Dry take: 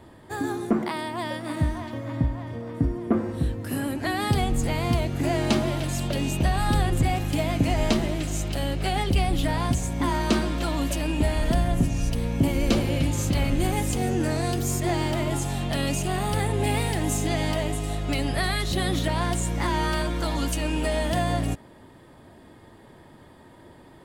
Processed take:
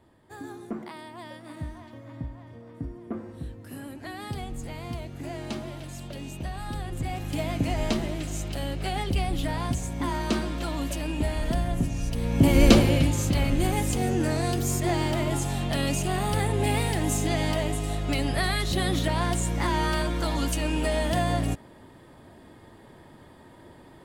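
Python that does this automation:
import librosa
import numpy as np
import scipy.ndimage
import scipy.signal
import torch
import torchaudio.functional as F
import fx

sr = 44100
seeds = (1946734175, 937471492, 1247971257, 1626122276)

y = fx.gain(x, sr, db=fx.line((6.83, -11.5), (7.4, -4.0), (12.1, -4.0), (12.63, 7.5), (13.19, -0.5)))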